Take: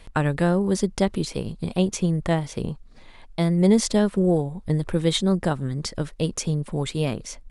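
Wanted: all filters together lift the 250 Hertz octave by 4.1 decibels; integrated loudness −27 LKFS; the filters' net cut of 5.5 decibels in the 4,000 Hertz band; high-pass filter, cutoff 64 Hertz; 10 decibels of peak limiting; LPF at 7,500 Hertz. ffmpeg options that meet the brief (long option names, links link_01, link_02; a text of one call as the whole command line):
ffmpeg -i in.wav -af "highpass=64,lowpass=7500,equalizer=frequency=250:width_type=o:gain=6.5,equalizer=frequency=4000:width_type=o:gain=-6.5,volume=-3dB,alimiter=limit=-16.5dB:level=0:latency=1" out.wav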